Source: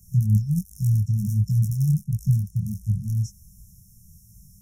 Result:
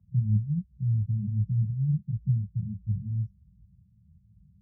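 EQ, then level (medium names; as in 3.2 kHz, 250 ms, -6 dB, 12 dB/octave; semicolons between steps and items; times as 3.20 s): high-pass 52 Hz 24 dB/octave; low-pass 1.5 kHz 24 dB/octave; dynamic bell 470 Hz, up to +5 dB, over -47 dBFS, Q 2.6; -5.5 dB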